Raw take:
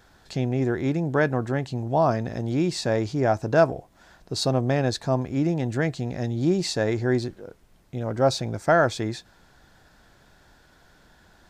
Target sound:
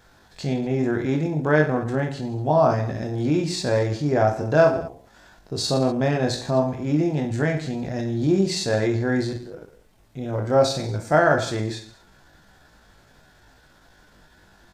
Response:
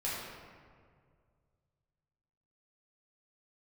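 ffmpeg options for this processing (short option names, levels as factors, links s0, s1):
-af "aecho=1:1:20|46|79.8|123.7|180.9:0.631|0.398|0.251|0.158|0.1,atempo=0.78"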